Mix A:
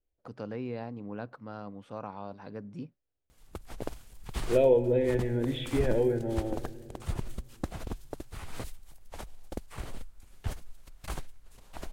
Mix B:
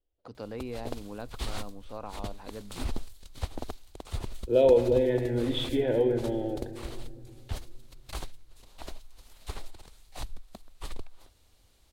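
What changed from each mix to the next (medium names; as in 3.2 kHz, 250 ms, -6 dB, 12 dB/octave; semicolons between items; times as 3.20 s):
second voice: send +6.0 dB; background: entry -2.95 s; master: add fifteen-band graphic EQ 160 Hz -8 dB, 1.6 kHz -3 dB, 4 kHz +7 dB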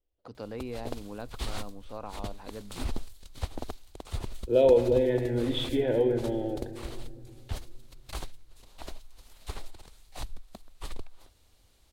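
no change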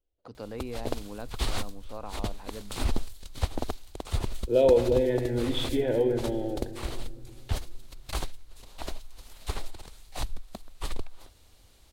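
background +5.5 dB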